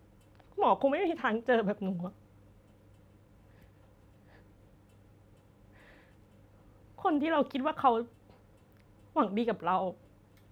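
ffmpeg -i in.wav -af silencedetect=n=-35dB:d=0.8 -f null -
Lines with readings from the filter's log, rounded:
silence_start: 2.08
silence_end: 7.05 | silence_duration: 4.96
silence_start: 8.03
silence_end: 9.16 | silence_duration: 1.14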